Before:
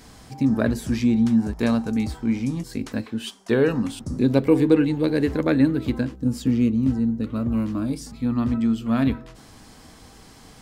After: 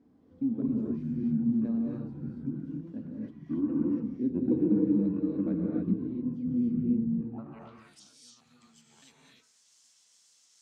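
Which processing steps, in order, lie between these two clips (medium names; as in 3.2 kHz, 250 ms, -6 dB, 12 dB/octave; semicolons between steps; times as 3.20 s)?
pitch shift switched off and on -7.5 st, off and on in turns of 205 ms; band-pass sweep 280 Hz -> 6.8 kHz, 7.16–7.85 s; gated-style reverb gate 320 ms rising, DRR -3 dB; trim -8.5 dB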